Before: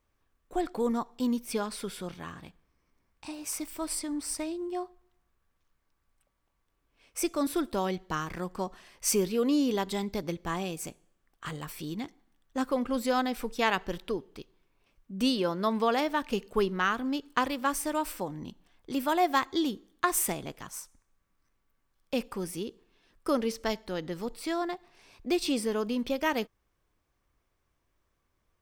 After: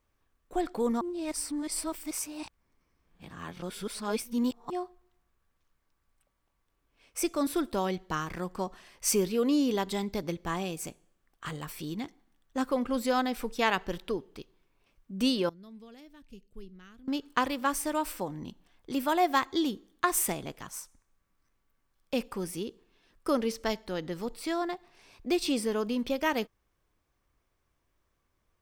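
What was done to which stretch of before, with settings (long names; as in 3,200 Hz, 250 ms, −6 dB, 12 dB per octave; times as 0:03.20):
0:01.01–0:04.70: reverse
0:15.49–0:17.08: guitar amp tone stack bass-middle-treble 10-0-1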